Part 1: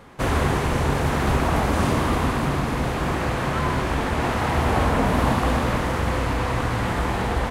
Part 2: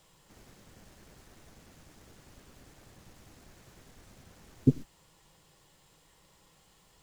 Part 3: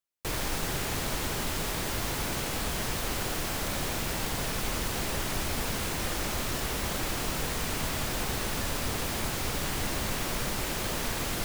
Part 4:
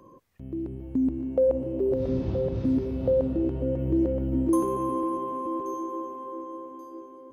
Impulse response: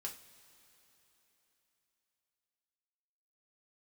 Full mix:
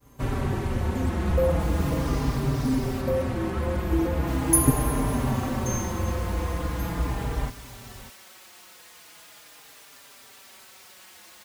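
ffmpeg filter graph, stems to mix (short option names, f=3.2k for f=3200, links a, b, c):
-filter_complex "[0:a]lowshelf=f=330:g=9.5,volume=-8.5dB,asplit=2[a][b];[b]volume=-15dB[c];[1:a]volume=2.5dB[d];[2:a]highpass=f=1.2k:p=1,adelay=1350,volume=-9dB,asplit=3[e][f][g];[e]atrim=end=3.01,asetpts=PTS-STARTPTS,afade=t=out:st=3.006:d=0.004:c=hsin[h];[f]atrim=start=3.01:end=4.27,asetpts=PTS-STARTPTS,volume=0[i];[g]atrim=start=4.27,asetpts=PTS-STARTPTS,afade=t=in:d=0.004:c=hsin[j];[h][i][j]concat=n=3:v=0:a=1[k];[3:a]aexciter=amount=7.2:drive=9.8:freq=4.2k,aeval=exprs='val(0)+0.00501*(sin(2*PI*60*n/s)+sin(2*PI*2*60*n/s)/2+sin(2*PI*3*60*n/s)/3+sin(2*PI*4*60*n/s)/4+sin(2*PI*5*60*n/s)/5)':c=same,volume=-2dB[l];[c]aecho=0:1:591:1[m];[a][d][k][l][m]amix=inputs=5:normalize=0,agate=range=-33dB:threshold=-41dB:ratio=3:detection=peak,asplit=2[n][o];[o]adelay=4.6,afreqshift=-0.4[p];[n][p]amix=inputs=2:normalize=1"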